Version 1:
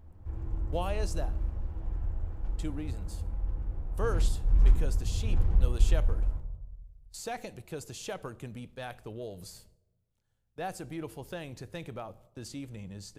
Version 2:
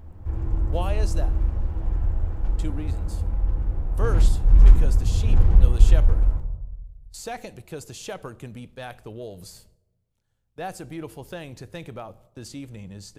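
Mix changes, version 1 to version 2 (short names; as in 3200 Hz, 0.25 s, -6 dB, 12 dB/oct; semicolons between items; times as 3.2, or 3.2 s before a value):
speech +3.5 dB; background +9.5 dB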